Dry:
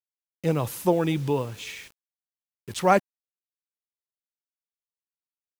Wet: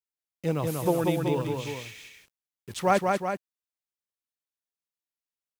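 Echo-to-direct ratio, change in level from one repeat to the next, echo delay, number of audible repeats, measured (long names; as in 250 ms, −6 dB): −2.0 dB, −4.5 dB, 188 ms, 2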